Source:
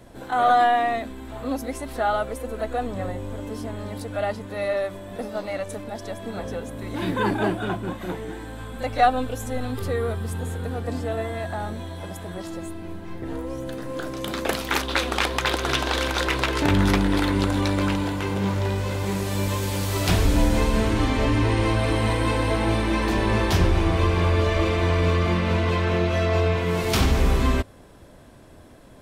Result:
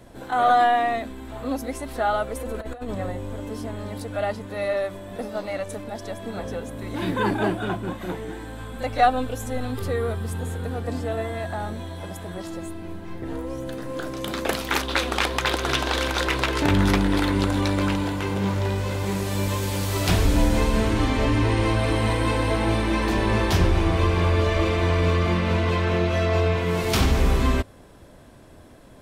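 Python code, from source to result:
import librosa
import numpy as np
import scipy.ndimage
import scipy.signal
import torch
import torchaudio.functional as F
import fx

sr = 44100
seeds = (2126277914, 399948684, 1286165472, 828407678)

y = fx.over_compress(x, sr, threshold_db=-30.0, ratio=-0.5, at=(2.35, 2.95))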